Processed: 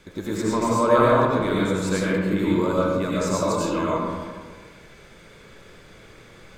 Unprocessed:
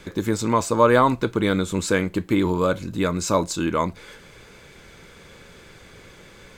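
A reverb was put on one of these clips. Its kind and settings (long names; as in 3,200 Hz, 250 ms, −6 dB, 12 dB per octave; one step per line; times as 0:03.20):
comb and all-pass reverb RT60 1.6 s, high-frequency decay 0.45×, pre-delay 55 ms, DRR −6.5 dB
level −8 dB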